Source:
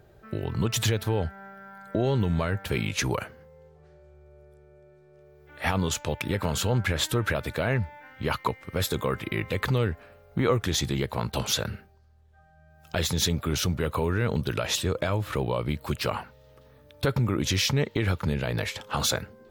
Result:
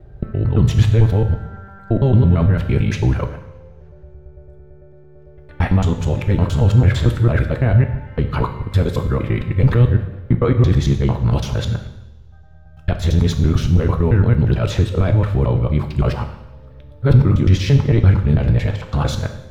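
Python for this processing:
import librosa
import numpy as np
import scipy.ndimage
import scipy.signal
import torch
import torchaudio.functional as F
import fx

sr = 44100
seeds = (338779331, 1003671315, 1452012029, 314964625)

y = fx.local_reverse(x, sr, ms=112.0)
y = fx.riaa(y, sr, side='playback')
y = fx.rev_double_slope(y, sr, seeds[0], early_s=0.85, late_s=2.6, knee_db=-24, drr_db=5.5)
y = F.gain(torch.from_numpy(y), 2.5).numpy()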